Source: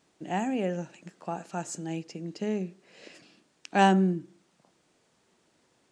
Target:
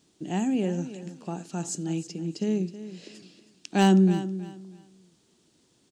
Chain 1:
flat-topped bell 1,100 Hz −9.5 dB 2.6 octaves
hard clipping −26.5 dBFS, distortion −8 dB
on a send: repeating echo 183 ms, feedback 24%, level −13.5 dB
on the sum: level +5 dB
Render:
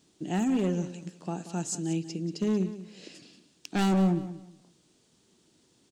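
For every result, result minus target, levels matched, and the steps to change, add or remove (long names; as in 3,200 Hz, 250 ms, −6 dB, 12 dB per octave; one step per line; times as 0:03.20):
hard clipping: distortion +24 dB; echo 137 ms early
change: hard clipping −16 dBFS, distortion −32 dB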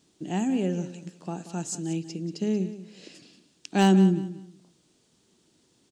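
echo 137 ms early
change: repeating echo 320 ms, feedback 24%, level −13.5 dB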